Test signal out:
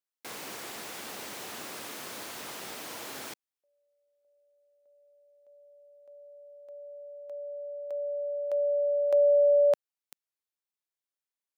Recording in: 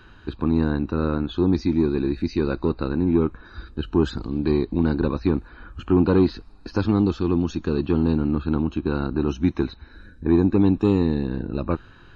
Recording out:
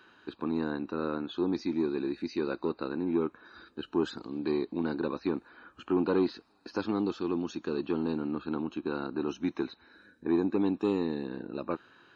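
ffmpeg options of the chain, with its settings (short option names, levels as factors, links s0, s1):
-af "highpass=290,volume=0.501"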